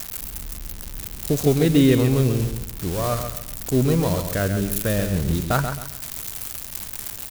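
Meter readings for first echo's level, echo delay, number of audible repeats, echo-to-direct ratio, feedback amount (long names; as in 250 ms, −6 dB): −7.5 dB, 134 ms, 3, −7.0 dB, 31%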